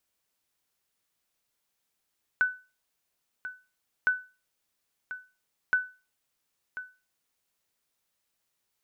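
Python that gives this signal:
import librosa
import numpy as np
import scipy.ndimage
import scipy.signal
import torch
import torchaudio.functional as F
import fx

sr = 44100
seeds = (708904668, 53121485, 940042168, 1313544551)

y = fx.sonar_ping(sr, hz=1500.0, decay_s=0.31, every_s=1.66, pings=3, echo_s=1.04, echo_db=-13.5, level_db=-16.5)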